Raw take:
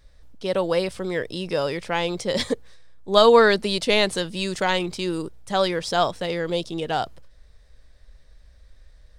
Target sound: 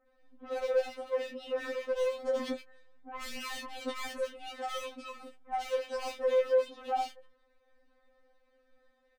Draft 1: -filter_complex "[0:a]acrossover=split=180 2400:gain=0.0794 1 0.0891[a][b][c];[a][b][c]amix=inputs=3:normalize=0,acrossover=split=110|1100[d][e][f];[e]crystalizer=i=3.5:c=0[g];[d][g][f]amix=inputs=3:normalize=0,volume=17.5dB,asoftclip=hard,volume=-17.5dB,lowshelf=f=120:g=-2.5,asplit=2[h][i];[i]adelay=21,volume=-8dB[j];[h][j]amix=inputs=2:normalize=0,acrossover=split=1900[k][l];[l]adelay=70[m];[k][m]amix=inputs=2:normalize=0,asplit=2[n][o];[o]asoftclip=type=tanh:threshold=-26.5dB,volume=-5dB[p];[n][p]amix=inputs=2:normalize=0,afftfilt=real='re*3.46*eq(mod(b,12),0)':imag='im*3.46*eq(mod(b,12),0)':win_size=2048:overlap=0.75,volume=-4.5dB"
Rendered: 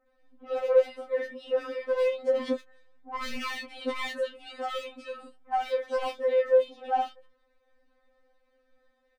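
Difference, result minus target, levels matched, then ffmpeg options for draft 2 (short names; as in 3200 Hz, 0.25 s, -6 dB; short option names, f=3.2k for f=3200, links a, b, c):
overloaded stage: distortion -6 dB
-filter_complex "[0:a]acrossover=split=180 2400:gain=0.0794 1 0.0891[a][b][c];[a][b][c]amix=inputs=3:normalize=0,acrossover=split=110|1100[d][e][f];[e]crystalizer=i=3.5:c=0[g];[d][g][f]amix=inputs=3:normalize=0,volume=28.5dB,asoftclip=hard,volume=-28.5dB,lowshelf=f=120:g=-2.5,asplit=2[h][i];[i]adelay=21,volume=-8dB[j];[h][j]amix=inputs=2:normalize=0,acrossover=split=1900[k][l];[l]adelay=70[m];[k][m]amix=inputs=2:normalize=0,asplit=2[n][o];[o]asoftclip=type=tanh:threshold=-26.5dB,volume=-5dB[p];[n][p]amix=inputs=2:normalize=0,afftfilt=real='re*3.46*eq(mod(b,12),0)':imag='im*3.46*eq(mod(b,12),0)':win_size=2048:overlap=0.75,volume=-4.5dB"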